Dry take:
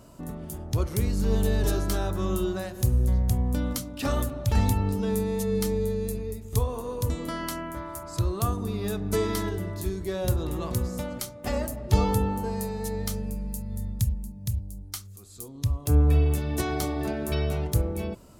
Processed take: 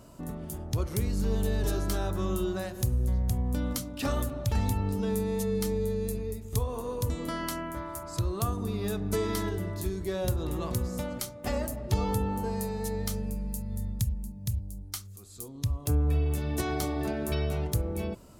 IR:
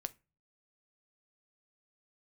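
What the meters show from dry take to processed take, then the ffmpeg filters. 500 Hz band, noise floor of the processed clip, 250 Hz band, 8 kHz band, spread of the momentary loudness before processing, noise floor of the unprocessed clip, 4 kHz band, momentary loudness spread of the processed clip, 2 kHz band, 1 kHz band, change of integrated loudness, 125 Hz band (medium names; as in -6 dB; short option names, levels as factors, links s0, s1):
-2.5 dB, -45 dBFS, -2.5 dB, -2.0 dB, 10 LU, -44 dBFS, -2.5 dB, 7 LU, -2.5 dB, -3.0 dB, -3.5 dB, -4.0 dB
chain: -af "acompressor=threshold=0.0562:ratio=2,volume=0.891"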